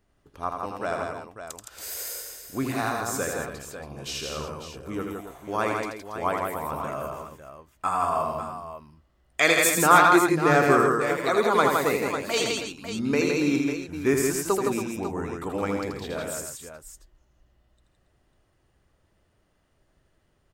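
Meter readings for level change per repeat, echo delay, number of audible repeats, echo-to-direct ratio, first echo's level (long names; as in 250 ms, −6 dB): repeats not evenly spaced, 81 ms, 5, −0.5 dB, −5.0 dB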